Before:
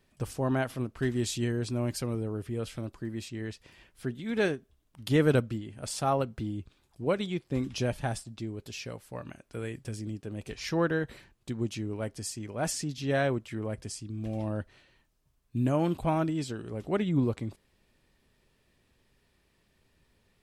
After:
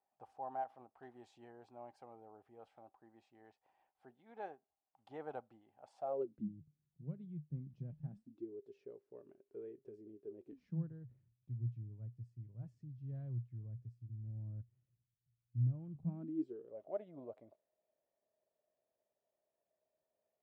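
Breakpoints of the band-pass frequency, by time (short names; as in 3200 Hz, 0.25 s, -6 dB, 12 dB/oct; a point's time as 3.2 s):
band-pass, Q 11
5.97 s 790 Hz
6.56 s 150 Hz
8.04 s 150 Hz
8.48 s 400 Hz
10.38 s 400 Hz
10.91 s 120 Hz
15.86 s 120 Hz
16.79 s 630 Hz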